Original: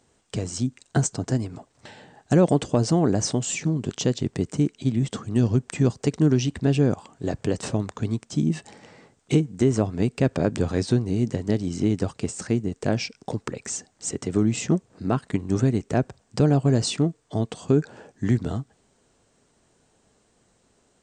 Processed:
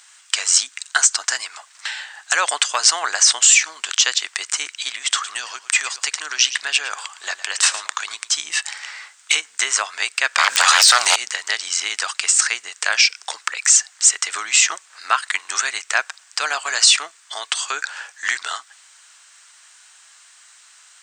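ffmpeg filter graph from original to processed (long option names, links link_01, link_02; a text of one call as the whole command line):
ffmpeg -i in.wav -filter_complex "[0:a]asettb=1/sr,asplit=3[link_01][link_02][link_03];[link_01]atrim=end=4.904[link_04];[link_02]atrim=start=4.9:end=8.36,asetpts=PTS-STARTPTS,afade=type=in:duration=0.004:curve=qsin,afade=type=out:start_time=3.456:duration=0.004:curve=qsin,acompressor=threshold=-23dB:ratio=2:attack=3.2:release=140:knee=1:detection=peak,aecho=1:1:111:0.178,atrim=end_sample=152586[link_05];[link_03]atrim=start=8.356[link_06];[link_04][link_05]acrossfade=duration=0.004:curve1=hsin:curve2=qsin[link_07];[link_07][link_06]acrossfade=duration=0.004:curve1=qsin:curve2=hsin,asettb=1/sr,asplit=3[link_08][link_09][link_10];[link_08]atrim=end=10.384[link_11];[link_09]atrim=start=10.38:end=11.16,asetpts=PTS-STARTPTS,afade=type=in:duration=0.004:curve=qsin,afade=type=out:start_time=0.776:duration=0.004:curve=qsin,highshelf=frequency=4400:gain=6.5,aeval=exprs='0.447*sin(PI/2*4.47*val(0)/0.447)':channel_layout=same[link_12];[link_10]atrim=start=11.156[link_13];[link_11][link_12]acrossfade=duration=0.004:curve1=hsin:curve2=qsin[link_14];[link_14][link_13]acrossfade=duration=0.004:curve1=qsin:curve2=hsin,highpass=frequency=1300:width=0.5412,highpass=frequency=1300:width=1.3066,alimiter=level_in=21.5dB:limit=-1dB:release=50:level=0:latency=1,volume=-1dB" out.wav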